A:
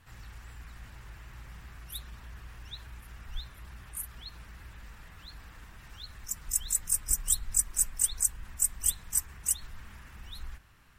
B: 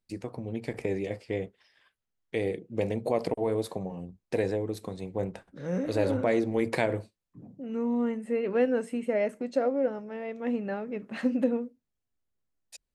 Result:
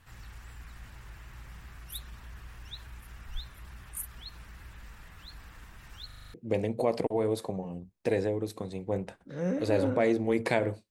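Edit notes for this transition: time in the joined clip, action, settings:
A
0:06.06: stutter in place 0.04 s, 7 plays
0:06.34: continue with B from 0:02.61

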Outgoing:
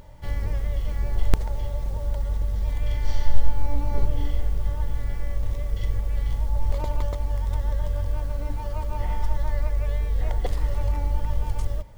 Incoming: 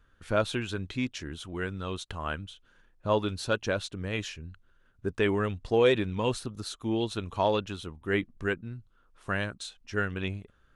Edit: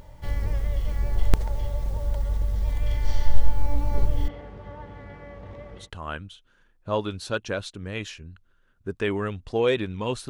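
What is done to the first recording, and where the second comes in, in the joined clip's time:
outgoing
0:04.28–0:05.90: band-pass filter 160–2,200 Hz
0:05.82: continue with incoming from 0:02.00, crossfade 0.16 s

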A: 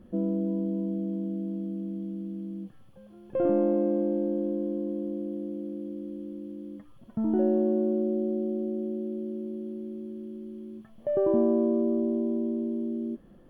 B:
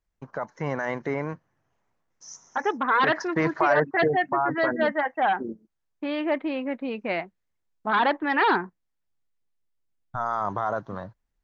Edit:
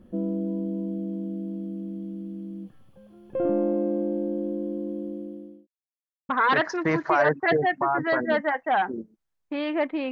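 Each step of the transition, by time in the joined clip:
A
0:04.86–0:05.67: fade out equal-power
0:05.67–0:06.29: silence
0:06.29: continue with B from 0:02.80

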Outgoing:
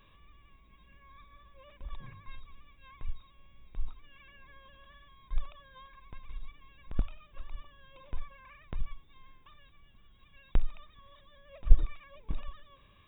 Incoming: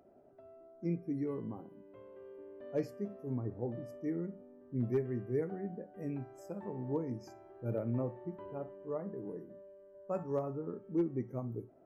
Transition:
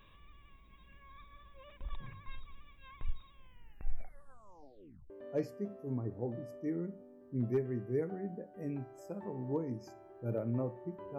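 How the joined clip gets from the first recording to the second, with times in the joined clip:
outgoing
0:03.35: tape stop 1.75 s
0:05.10: continue with incoming from 0:02.50

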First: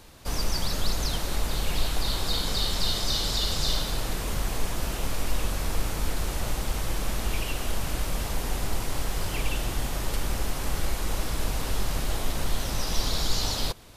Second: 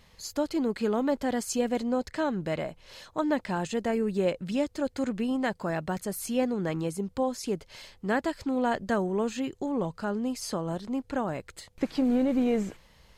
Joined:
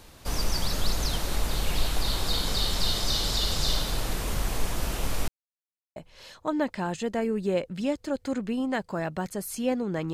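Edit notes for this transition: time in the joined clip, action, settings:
first
0:05.28–0:05.96: silence
0:05.96: continue with second from 0:02.67

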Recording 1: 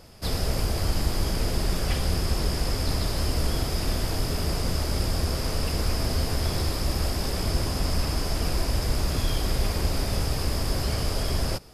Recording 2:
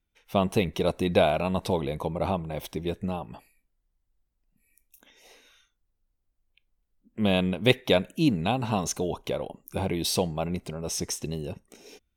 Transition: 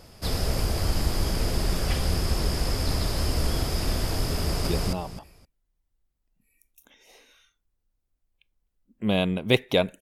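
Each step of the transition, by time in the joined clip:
recording 1
0:04.38–0:04.67: delay throw 260 ms, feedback 20%, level −0.5 dB
0:04.67: continue with recording 2 from 0:02.83

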